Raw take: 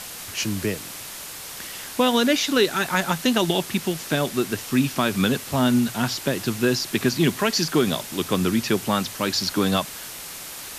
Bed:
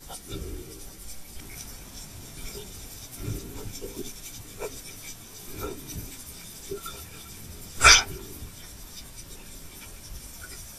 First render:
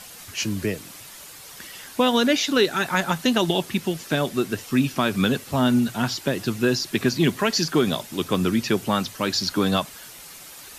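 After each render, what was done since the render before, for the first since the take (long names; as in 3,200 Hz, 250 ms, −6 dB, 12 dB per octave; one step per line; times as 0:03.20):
broadband denoise 8 dB, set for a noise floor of −37 dBFS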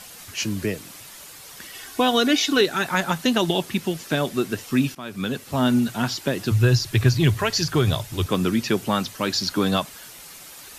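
0:01.74–0:02.61: comb filter 2.7 ms
0:04.95–0:05.65: fade in, from −18.5 dB
0:06.51–0:08.26: low shelf with overshoot 150 Hz +11.5 dB, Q 3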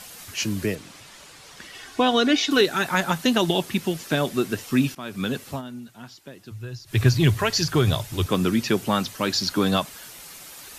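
0:00.75–0:02.51: high-frequency loss of the air 59 metres
0:05.48–0:07.00: duck −18 dB, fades 0.14 s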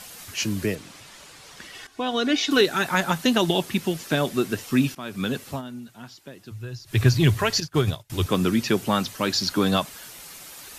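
0:01.87–0:02.53: fade in, from −13 dB
0:07.60–0:08.10: expander for the loud parts 2.5 to 1, over −36 dBFS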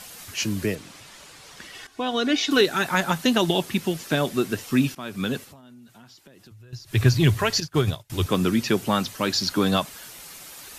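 0:05.44–0:06.73: downward compressor 8 to 1, threshold −45 dBFS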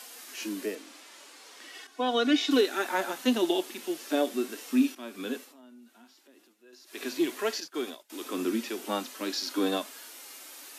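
Butterworth high-pass 250 Hz 48 dB per octave
harmonic and percussive parts rebalanced percussive −15 dB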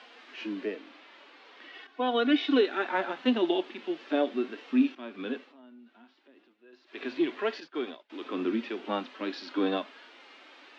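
low-pass filter 3,400 Hz 24 dB per octave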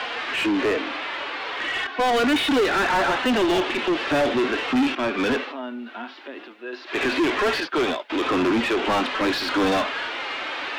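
mid-hump overdrive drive 34 dB, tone 2,300 Hz, clips at −13 dBFS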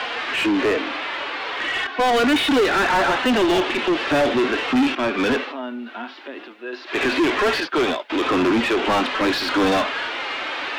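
level +2.5 dB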